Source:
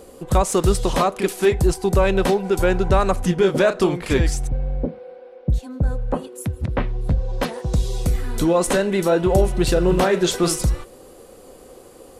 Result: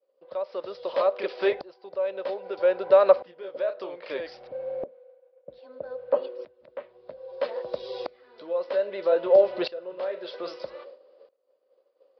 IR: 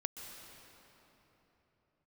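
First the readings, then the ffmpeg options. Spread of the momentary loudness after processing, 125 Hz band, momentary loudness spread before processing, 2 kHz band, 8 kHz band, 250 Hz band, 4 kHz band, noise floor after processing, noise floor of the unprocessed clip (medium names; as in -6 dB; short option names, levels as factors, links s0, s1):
21 LU, under -35 dB, 9 LU, -11.5 dB, under -40 dB, -19.0 dB, -12.5 dB, -69 dBFS, -45 dBFS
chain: -filter_complex "[0:a]bandreject=f=830:w=21,agate=range=0.0224:threshold=0.0224:ratio=3:detection=peak,equalizer=f=720:w=7.3:g=-9,asplit=2[s0][s1];[s1]acompressor=threshold=0.0562:ratio=6,volume=0.891[s2];[s0][s2]amix=inputs=2:normalize=0,highpass=f=570:t=q:w=5.6,aresample=11025,aresample=44100,aeval=exprs='val(0)*pow(10,-22*if(lt(mod(-0.62*n/s,1),2*abs(-0.62)/1000),1-mod(-0.62*n/s,1)/(2*abs(-0.62)/1000),(mod(-0.62*n/s,1)-2*abs(-0.62)/1000)/(1-2*abs(-0.62)/1000))/20)':c=same,volume=0.501"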